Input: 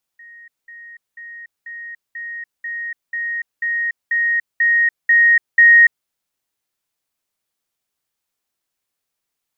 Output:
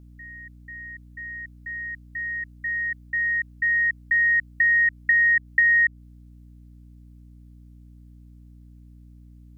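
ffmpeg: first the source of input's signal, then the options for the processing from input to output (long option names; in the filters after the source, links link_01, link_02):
-f lavfi -i "aevalsrc='pow(10,(-38.5+3*floor(t/0.49))/20)*sin(2*PI*1870*t)*clip(min(mod(t,0.49),0.29-mod(t,0.49))/0.005,0,1)':duration=5.88:sample_rate=44100"
-af "acompressor=threshold=-17dB:ratio=6,aeval=exprs='val(0)+0.00501*(sin(2*PI*60*n/s)+sin(2*PI*2*60*n/s)/2+sin(2*PI*3*60*n/s)/3+sin(2*PI*4*60*n/s)/4+sin(2*PI*5*60*n/s)/5)':channel_layout=same"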